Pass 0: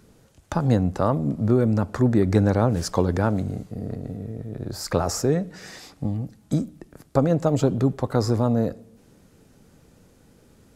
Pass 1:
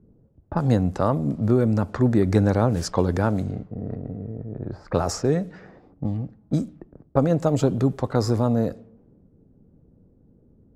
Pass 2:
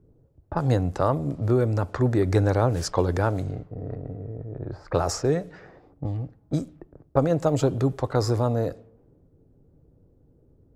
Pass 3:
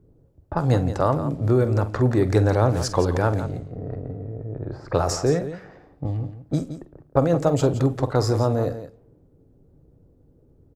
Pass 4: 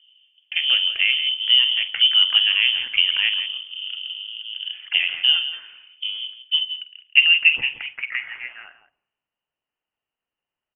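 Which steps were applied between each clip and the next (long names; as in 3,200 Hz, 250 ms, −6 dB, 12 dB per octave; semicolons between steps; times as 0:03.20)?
low-pass that shuts in the quiet parts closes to 350 Hz, open at −19 dBFS
parametric band 210 Hz −14 dB 0.39 octaves
multi-tap delay 47/170 ms −13.5/−11.5 dB; level +2 dB
high-pass filter sweep 230 Hz → 2,500 Hz, 0:06.51–0:08.89; voice inversion scrambler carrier 3,300 Hz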